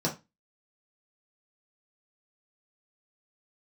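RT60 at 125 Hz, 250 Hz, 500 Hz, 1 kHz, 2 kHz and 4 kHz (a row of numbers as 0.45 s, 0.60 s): 0.25 s, 0.30 s, 0.20 s, 0.25 s, 0.25 s, 0.20 s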